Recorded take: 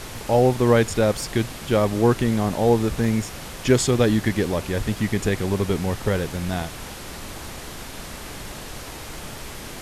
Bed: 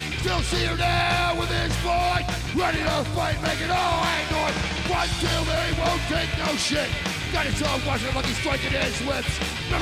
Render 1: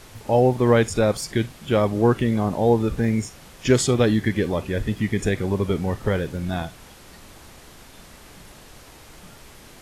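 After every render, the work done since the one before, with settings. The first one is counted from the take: noise print and reduce 10 dB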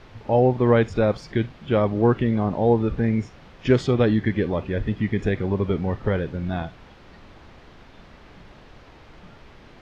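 air absorption 240 m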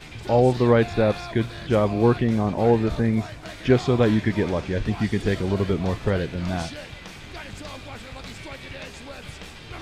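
add bed -13.5 dB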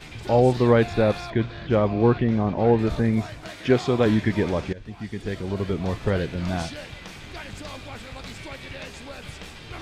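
1.3–2.79 air absorption 150 m; 3.47–4.06 HPF 160 Hz 6 dB/oct; 4.73–6.2 fade in, from -18 dB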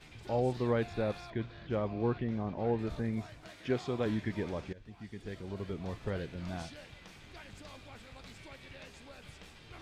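gain -13 dB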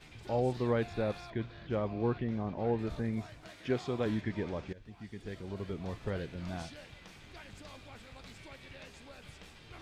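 4.21–4.69 air absorption 54 m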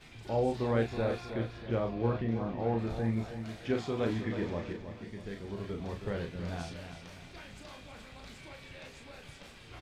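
doubler 35 ms -5 dB; on a send: feedback echo 0.32 s, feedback 42%, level -9.5 dB

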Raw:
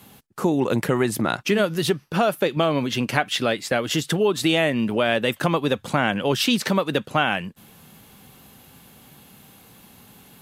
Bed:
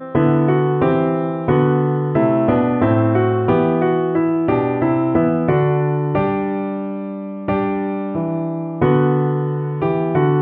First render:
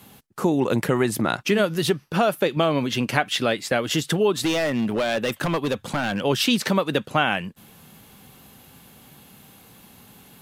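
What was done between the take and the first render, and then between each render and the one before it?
4.44–6.22 hard clip -18.5 dBFS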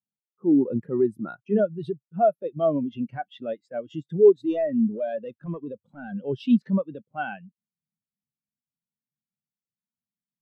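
transient shaper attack -7 dB, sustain -1 dB; spectral expander 2.5:1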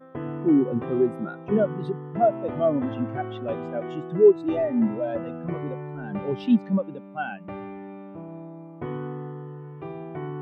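add bed -18 dB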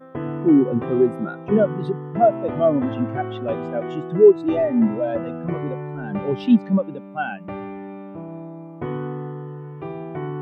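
gain +4.5 dB; limiter -3 dBFS, peak gain reduction 1 dB

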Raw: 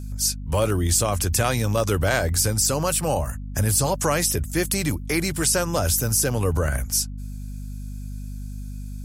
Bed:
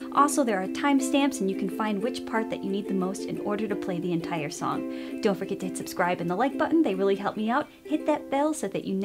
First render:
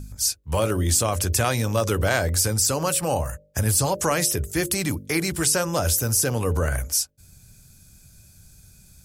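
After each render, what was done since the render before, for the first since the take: de-hum 50 Hz, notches 12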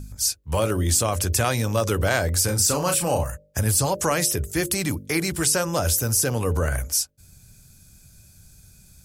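2.45–3.24 doubler 34 ms -5 dB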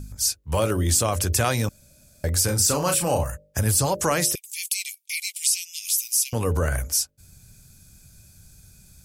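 1.69–2.24 room tone; 4.35–6.33 steep high-pass 2200 Hz 96 dB/oct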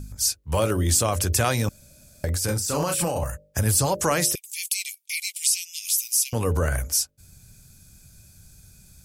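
1.62–3.24 negative-ratio compressor -25 dBFS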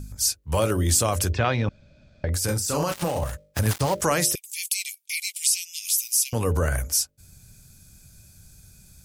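1.32–2.33 LPF 3600 Hz 24 dB/oct; 2.9–4.02 switching dead time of 0.094 ms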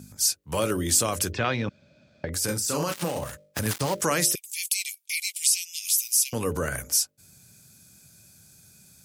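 HPF 160 Hz 12 dB/oct; dynamic EQ 740 Hz, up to -5 dB, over -39 dBFS, Q 1.3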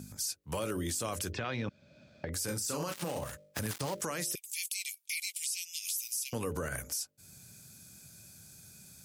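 limiter -18.5 dBFS, peak gain reduction 10 dB; compressor 1.5:1, threshold -44 dBFS, peak gain reduction 7 dB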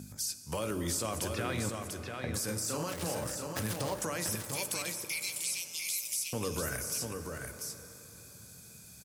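echo 0.692 s -5 dB; plate-style reverb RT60 4.1 s, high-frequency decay 0.45×, DRR 9 dB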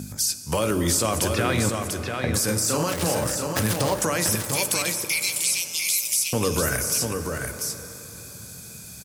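gain +11.5 dB

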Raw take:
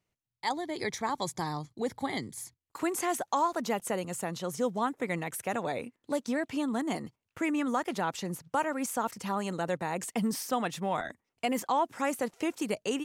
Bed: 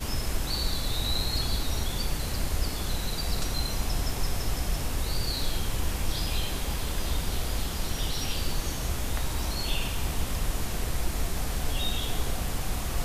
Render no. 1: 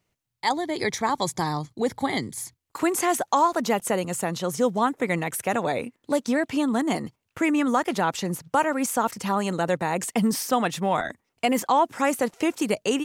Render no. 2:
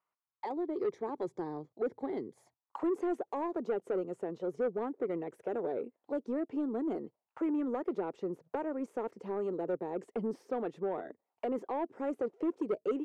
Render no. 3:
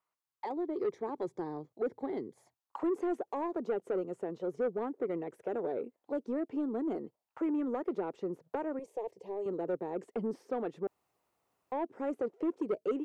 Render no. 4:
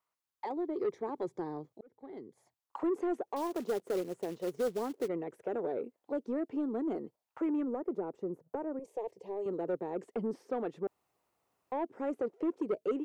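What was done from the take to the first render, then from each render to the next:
gain +7.5 dB
auto-wah 400–1100 Hz, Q 3.7, down, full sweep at -25 dBFS; soft clip -25.5 dBFS, distortion -15 dB
8.79–9.46 fixed phaser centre 570 Hz, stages 4; 10.87–11.72 room tone
1.81–2.79 fade in; 3.36–5.08 short-mantissa float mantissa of 2-bit; 7.63–8.85 bell 3300 Hz -14 dB 2.3 oct

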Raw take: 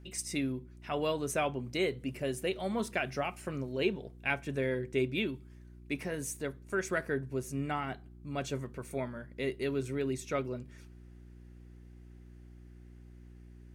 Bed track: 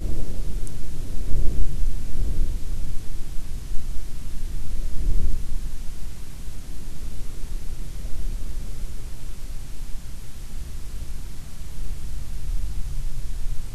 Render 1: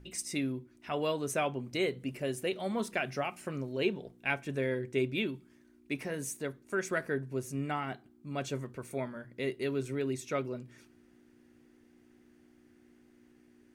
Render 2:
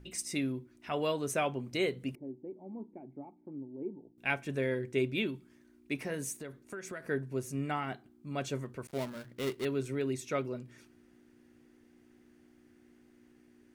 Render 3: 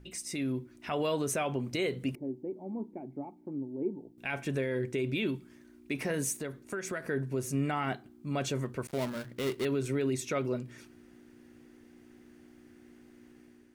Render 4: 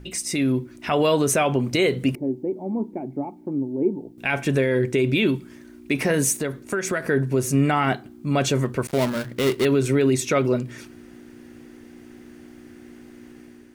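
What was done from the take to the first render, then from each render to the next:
de-hum 60 Hz, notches 3
2.15–4.18 vocal tract filter u; 6.32–7.08 compressor 5:1, threshold -39 dBFS; 8.87–9.65 switching dead time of 0.18 ms
limiter -28.5 dBFS, peak gain reduction 11.5 dB; AGC gain up to 6 dB
gain +11.5 dB

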